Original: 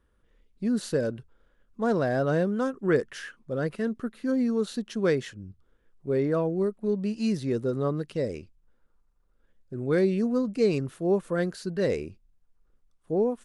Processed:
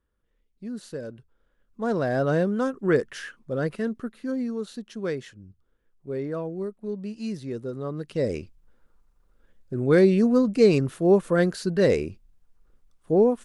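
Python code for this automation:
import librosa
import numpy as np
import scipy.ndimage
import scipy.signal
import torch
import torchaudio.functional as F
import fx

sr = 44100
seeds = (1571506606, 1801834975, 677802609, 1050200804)

y = fx.gain(x, sr, db=fx.line((1.01, -8.5), (2.22, 2.0), (3.69, 2.0), (4.65, -5.0), (7.87, -5.0), (8.33, 6.0)))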